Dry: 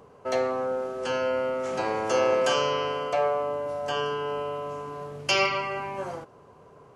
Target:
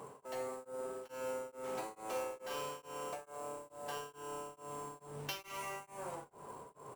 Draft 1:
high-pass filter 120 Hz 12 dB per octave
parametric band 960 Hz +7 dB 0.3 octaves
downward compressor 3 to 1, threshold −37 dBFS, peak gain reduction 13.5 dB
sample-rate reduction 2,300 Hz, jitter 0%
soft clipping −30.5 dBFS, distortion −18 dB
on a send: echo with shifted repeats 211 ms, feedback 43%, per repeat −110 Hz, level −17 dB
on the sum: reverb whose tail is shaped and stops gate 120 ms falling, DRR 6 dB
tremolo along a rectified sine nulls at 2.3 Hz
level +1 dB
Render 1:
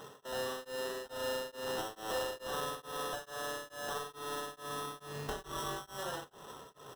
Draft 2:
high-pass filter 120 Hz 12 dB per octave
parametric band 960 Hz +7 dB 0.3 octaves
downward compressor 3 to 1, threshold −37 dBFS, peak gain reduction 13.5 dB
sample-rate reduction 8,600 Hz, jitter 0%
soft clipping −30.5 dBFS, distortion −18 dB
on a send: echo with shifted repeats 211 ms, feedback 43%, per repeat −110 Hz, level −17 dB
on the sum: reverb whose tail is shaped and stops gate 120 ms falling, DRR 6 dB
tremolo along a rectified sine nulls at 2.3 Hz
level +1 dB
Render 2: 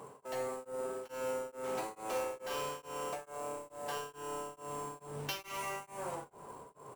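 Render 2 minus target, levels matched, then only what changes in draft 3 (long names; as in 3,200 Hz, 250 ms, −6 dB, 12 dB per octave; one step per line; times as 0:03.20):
downward compressor: peak gain reduction −4.5 dB
change: downward compressor 3 to 1, threshold −43.5 dBFS, peak gain reduction 18 dB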